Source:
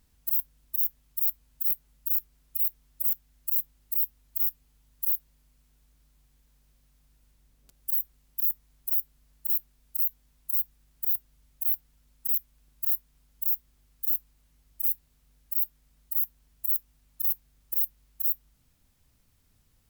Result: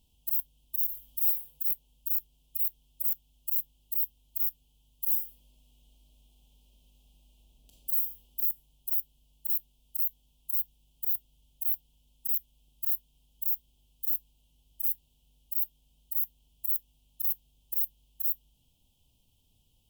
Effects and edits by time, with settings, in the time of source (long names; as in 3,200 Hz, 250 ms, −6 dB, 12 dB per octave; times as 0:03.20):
0:00.85–0:01.29: thrown reverb, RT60 2.1 s, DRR −6 dB
0:05.05–0:08.40: thrown reverb, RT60 1.6 s, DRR −3.5 dB
whole clip: Chebyshev band-stop filter 910–3,200 Hz, order 3; flat-topped bell 2,200 Hz +15 dB 1.3 octaves; level −2.5 dB